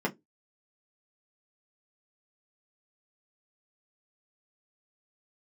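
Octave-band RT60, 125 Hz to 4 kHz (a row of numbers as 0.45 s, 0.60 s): 0.20 s, 0.25 s, 0.20 s, 0.15 s, 0.15 s, 0.10 s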